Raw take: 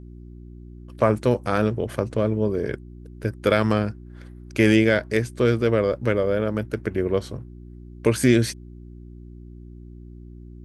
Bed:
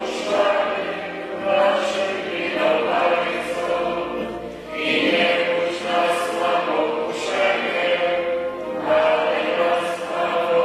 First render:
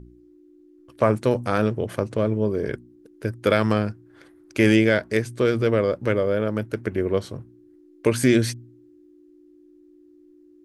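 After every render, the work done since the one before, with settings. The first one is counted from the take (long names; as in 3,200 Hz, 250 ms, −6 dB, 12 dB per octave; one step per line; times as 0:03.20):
hum removal 60 Hz, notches 4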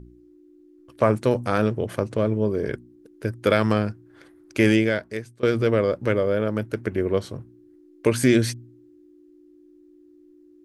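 0:04.59–0:05.43: fade out, to −22 dB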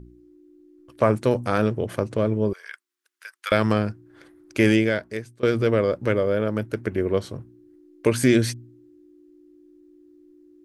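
0:02.53–0:03.52: high-pass filter 1,200 Hz 24 dB per octave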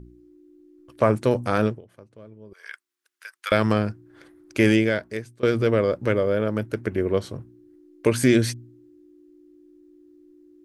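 0:01.66–0:02.66: duck −23 dB, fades 0.15 s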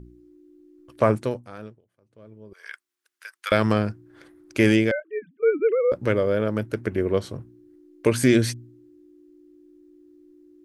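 0:01.10–0:02.34: duck −18 dB, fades 0.33 s
0:04.91–0:05.92: three sine waves on the formant tracks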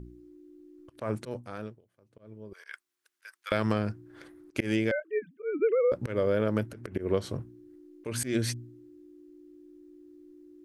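downward compressor 16 to 1, threshold −21 dBFS, peak gain reduction 10 dB
volume swells 128 ms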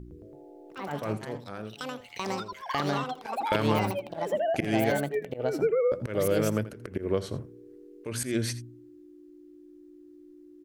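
delay with pitch and tempo change per echo 110 ms, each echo +5 semitones, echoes 3
single-tap delay 83 ms −16 dB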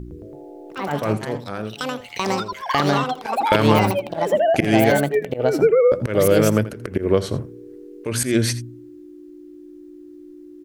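level +10 dB
brickwall limiter −1 dBFS, peak gain reduction 1.5 dB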